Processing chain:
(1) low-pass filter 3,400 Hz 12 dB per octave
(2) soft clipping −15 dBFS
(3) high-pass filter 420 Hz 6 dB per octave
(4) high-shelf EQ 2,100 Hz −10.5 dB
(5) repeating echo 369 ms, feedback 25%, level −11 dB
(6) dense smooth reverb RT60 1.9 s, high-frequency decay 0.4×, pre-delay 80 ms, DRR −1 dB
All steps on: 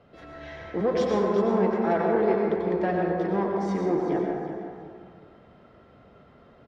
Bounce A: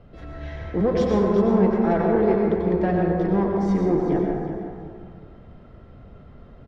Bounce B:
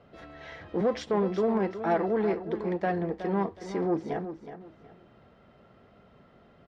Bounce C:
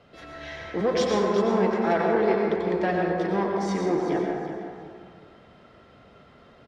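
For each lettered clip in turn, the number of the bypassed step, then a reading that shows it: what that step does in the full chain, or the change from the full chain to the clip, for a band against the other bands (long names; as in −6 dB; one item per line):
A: 3, change in integrated loudness +4.0 LU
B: 6, change in integrated loudness −4.0 LU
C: 4, 2 kHz band +4.0 dB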